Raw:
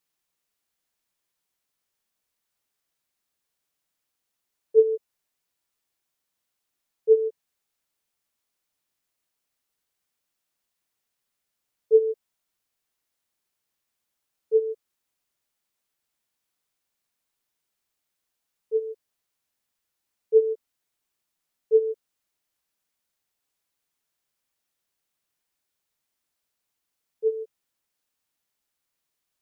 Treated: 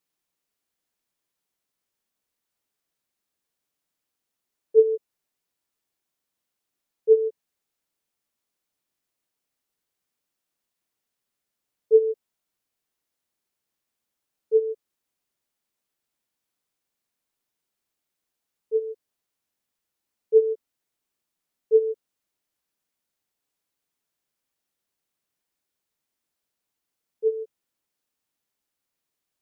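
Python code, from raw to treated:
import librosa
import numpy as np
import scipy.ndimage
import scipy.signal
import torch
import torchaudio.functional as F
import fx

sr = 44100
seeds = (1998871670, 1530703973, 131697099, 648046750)

y = fx.peak_eq(x, sr, hz=280.0, db=4.5, octaves=2.3)
y = F.gain(torch.from_numpy(y), -2.5).numpy()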